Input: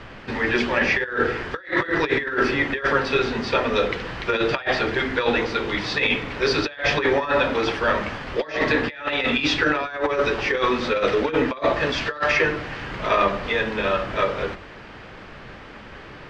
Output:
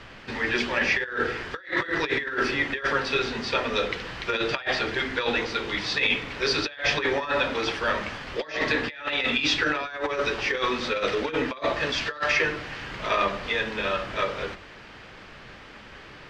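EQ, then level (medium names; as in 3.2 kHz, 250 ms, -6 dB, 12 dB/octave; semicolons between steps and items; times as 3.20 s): treble shelf 2.2 kHz +8.5 dB; -6.5 dB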